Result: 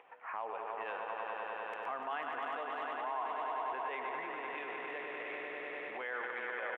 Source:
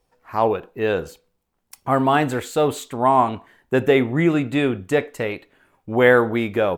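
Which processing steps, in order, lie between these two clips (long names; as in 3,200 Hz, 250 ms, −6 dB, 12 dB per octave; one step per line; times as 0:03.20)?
adaptive Wiener filter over 9 samples
pitch vibrato 2.9 Hz 9 cents
single-tap delay 118 ms −9.5 dB
upward compression, threshold −24 dBFS
drawn EQ curve 2,100 Hz 0 dB, 3,100 Hz −4 dB, 4,600 Hz −25 dB, 9,600 Hz −30 dB
echo that builds up and dies away 99 ms, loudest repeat 5, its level −8.5 dB
brickwall limiter −17.5 dBFS, peak gain reduction 16 dB
high-pass filter 990 Hz 12 dB per octave
parametric band 1,400 Hz −2.5 dB
level −6 dB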